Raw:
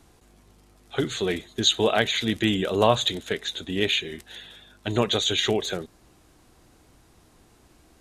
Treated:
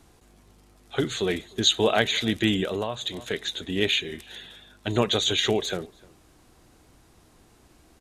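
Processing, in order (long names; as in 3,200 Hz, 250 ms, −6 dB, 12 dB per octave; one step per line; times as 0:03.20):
slap from a distant wall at 52 metres, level −25 dB
0:02.63–0:03.33: downward compressor 12 to 1, threshold −25 dBFS, peak gain reduction 13 dB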